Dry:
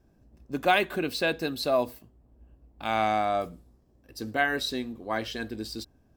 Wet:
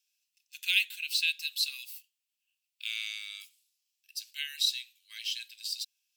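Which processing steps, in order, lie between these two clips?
elliptic high-pass 2600 Hz, stop band 70 dB; gain +5.5 dB

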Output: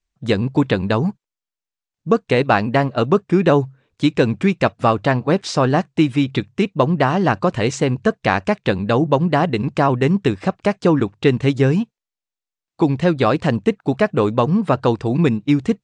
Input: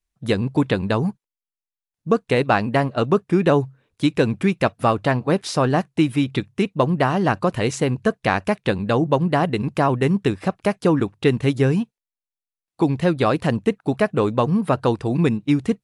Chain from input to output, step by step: steep low-pass 8000 Hz 36 dB/oct; gain +2.5 dB

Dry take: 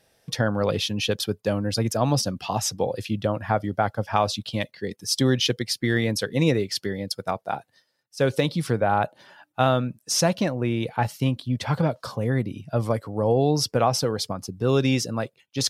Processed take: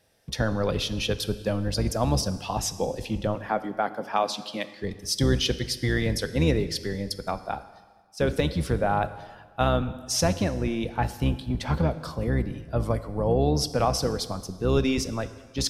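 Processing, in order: octaver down 1 oct, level -2 dB; 3.35–4.73 HPF 210 Hz 24 dB/oct; plate-style reverb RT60 1.5 s, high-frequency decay 0.95×, DRR 12 dB; gain -3 dB

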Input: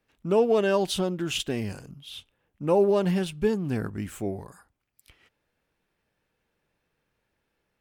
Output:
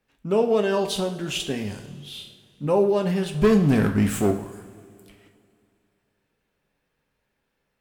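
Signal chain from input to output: 1.85–2.67 flutter echo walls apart 4.7 m, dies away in 0.46 s; 3.34–4.31 sample leveller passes 3; two-slope reverb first 0.46 s, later 2.6 s, from -17 dB, DRR 4 dB

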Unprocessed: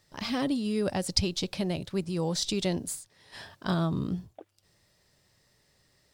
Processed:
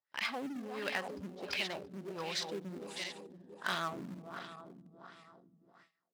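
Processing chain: regenerating reverse delay 0.169 s, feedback 77%, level -8 dB; LFO low-pass sine 1.4 Hz 220–2400 Hz; in parallel at -8 dB: overloaded stage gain 33 dB; on the sum: gate with hold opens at -39 dBFS; differentiator; gain +10 dB

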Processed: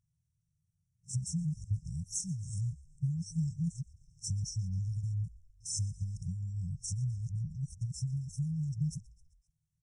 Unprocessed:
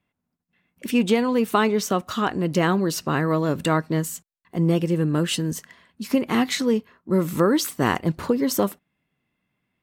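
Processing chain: whole clip reversed; compressor 16:1, threshold -26 dBFS, peak gain reduction 13.5 dB; brick-wall FIR band-stop 290–8400 Hz; low shelf 240 Hz -2 dB; frequency-shifting echo 0.129 s, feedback 57%, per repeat -78 Hz, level -21 dB; pitch shift -8 st; downsampling 22050 Hz

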